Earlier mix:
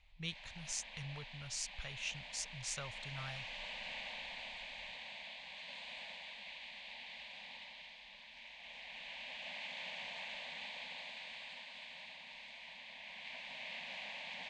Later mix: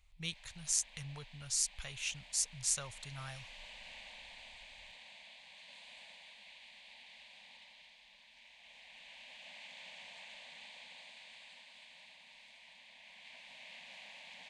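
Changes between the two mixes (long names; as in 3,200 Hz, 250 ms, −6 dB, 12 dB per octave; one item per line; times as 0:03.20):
background −8.0 dB
master: remove high-frequency loss of the air 110 metres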